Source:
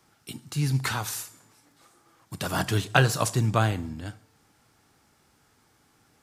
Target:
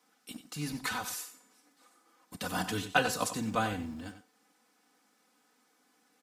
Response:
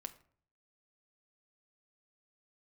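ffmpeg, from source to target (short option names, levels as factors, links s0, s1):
-filter_complex "[0:a]aecho=1:1:4:0.9,acrossover=split=190|3400[s0][s1][s2];[s0]aeval=exprs='val(0)*gte(abs(val(0)),0.0075)':c=same[s3];[s3][s1][s2]amix=inputs=3:normalize=0,asplit=2[s4][s5];[s5]adelay=93.29,volume=0.282,highshelf=f=4000:g=-2.1[s6];[s4][s6]amix=inputs=2:normalize=0,volume=0.398"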